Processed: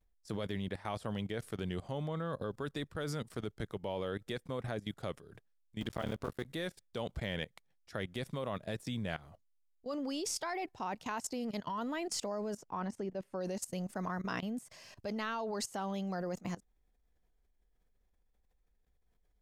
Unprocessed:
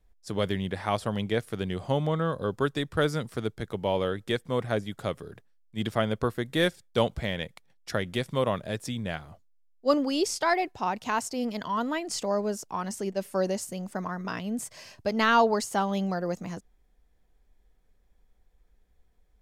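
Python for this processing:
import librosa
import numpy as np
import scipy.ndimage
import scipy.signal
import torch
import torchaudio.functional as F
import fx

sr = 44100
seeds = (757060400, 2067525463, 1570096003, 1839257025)

y = fx.cycle_switch(x, sr, every=3, mode='muted', at=(5.8, 6.46))
y = fx.lowpass(y, sr, hz=1700.0, slope=6, at=(12.57, 13.41))
y = fx.level_steps(y, sr, step_db=18)
y = fx.vibrato(y, sr, rate_hz=0.5, depth_cents=39.0)
y = F.gain(torch.from_numpy(y), -1.0).numpy()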